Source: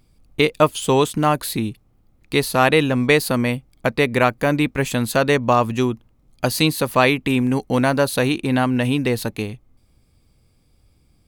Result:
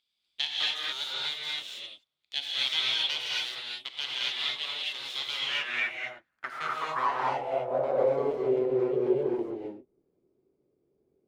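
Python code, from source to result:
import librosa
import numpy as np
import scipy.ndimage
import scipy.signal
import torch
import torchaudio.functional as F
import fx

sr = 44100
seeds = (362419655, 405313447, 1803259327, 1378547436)

y = np.abs(x)
y = fx.rev_gated(y, sr, seeds[0], gate_ms=290, shape='rising', drr_db=-5.0)
y = fx.filter_sweep_bandpass(y, sr, from_hz=3500.0, to_hz=390.0, start_s=5.28, end_s=8.49, q=6.0)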